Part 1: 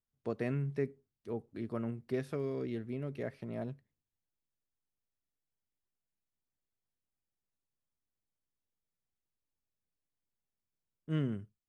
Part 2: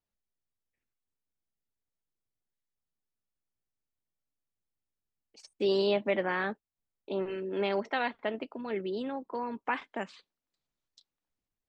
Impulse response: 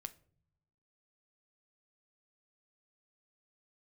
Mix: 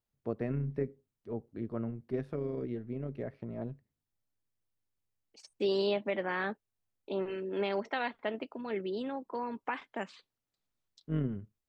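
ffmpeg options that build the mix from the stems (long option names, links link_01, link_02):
-filter_complex "[0:a]lowpass=frequency=1100:poles=1,tremolo=f=110:d=0.462,volume=3dB[link_01];[1:a]alimiter=limit=-20dB:level=0:latency=1:release=312,volume=-1.5dB[link_02];[link_01][link_02]amix=inputs=2:normalize=0"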